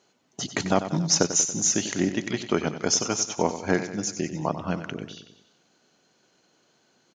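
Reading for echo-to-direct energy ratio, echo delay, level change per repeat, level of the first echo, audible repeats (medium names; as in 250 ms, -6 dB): -10.0 dB, 94 ms, -4.5 dB, -11.5 dB, 4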